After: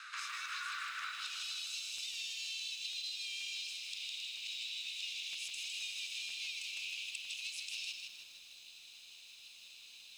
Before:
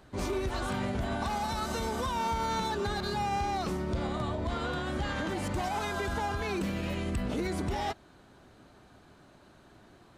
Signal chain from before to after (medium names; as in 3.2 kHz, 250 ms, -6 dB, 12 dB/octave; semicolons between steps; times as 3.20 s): comb filter that takes the minimum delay 0.77 ms; low-pass 6.8 kHz 12 dB/octave; frequency shift -22 Hz; steep high-pass 1.2 kHz 72 dB/octave, from 1.11 s 2.5 kHz; compression 6:1, threshold -57 dBFS, peak gain reduction 18 dB; crackling interface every 0.48 s, samples 512, repeat, from 1.00 s; bit-crushed delay 157 ms, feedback 55%, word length 13-bit, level -4 dB; trim +15 dB